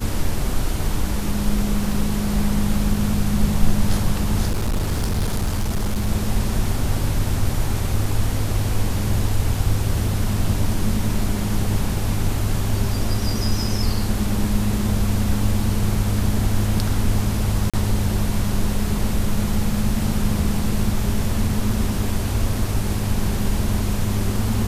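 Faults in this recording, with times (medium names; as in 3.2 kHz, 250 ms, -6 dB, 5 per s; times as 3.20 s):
4.48–6.09 s: clipped -17 dBFS
17.70–17.74 s: dropout 36 ms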